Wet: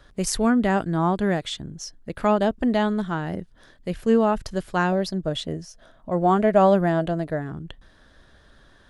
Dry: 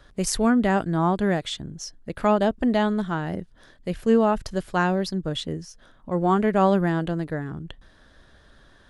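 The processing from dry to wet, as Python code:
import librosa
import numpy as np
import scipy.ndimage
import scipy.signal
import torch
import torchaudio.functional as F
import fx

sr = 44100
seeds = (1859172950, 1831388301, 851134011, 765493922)

y = fx.peak_eq(x, sr, hz=650.0, db=11.5, octaves=0.27, at=(4.92, 7.51))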